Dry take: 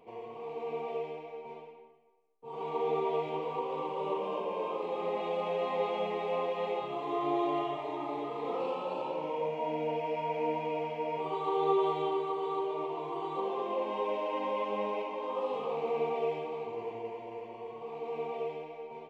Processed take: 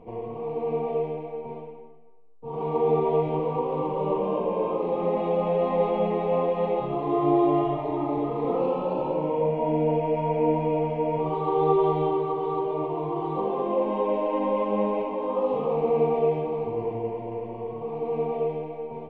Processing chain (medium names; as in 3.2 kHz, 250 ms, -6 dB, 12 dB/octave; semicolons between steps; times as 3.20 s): tilt EQ -4.5 dB/octave; band-stop 400 Hz, Q 12; trim +5 dB